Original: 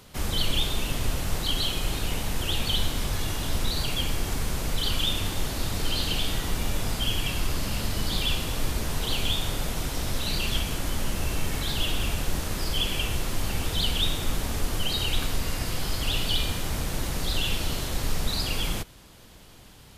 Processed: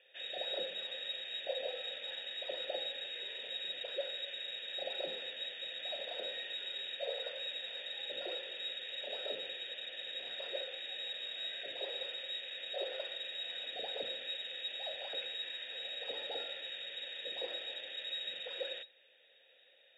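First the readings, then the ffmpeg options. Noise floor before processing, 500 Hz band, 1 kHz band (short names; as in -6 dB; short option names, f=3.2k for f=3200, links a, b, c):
-49 dBFS, -6.0 dB, -16.5 dB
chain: -filter_complex "[0:a]lowpass=f=3.2k:t=q:w=0.5098,lowpass=f=3.2k:t=q:w=0.6013,lowpass=f=3.2k:t=q:w=0.9,lowpass=f=3.2k:t=q:w=2.563,afreqshift=-3800,aeval=exprs='0.251*(cos(1*acos(clip(val(0)/0.251,-1,1)))-cos(1*PI/2))+0.00891*(cos(6*acos(clip(val(0)/0.251,-1,1)))-cos(6*PI/2))':c=same,asplit=3[a][b][c];[a]bandpass=f=530:t=q:w=8,volume=0dB[d];[b]bandpass=f=1.84k:t=q:w=8,volume=-6dB[e];[c]bandpass=f=2.48k:t=q:w=8,volume=-9dB[f];[d][e][f]amix=inputs=3:normalize=0,volume=1.5dB"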